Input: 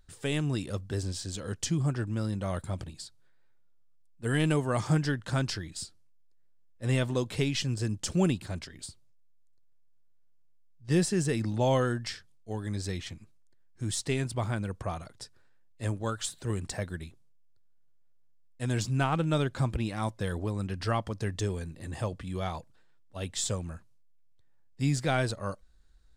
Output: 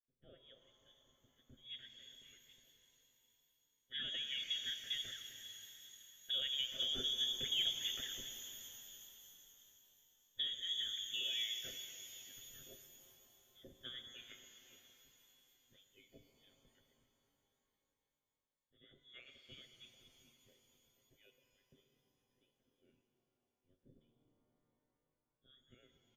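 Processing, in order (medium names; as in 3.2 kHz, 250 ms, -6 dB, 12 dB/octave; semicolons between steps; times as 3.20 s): Doppler pass-by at 7.99 s, 28 m/s, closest 22 m; comb 7.4 ms, depth 61%; frequency inversion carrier 3.5 kHz; Chebyshev band-stop 560–1600 Hz, order 2; level-controlled noise filter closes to 300 Hz, open at -34 dBFS; compression 2.5:1, threshold -44 dBFS, peak gain reduction 14.5 dB; pitch-shifted reverb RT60 4 s, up +12 st, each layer -8 dB, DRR 6 dB; trim +2 dB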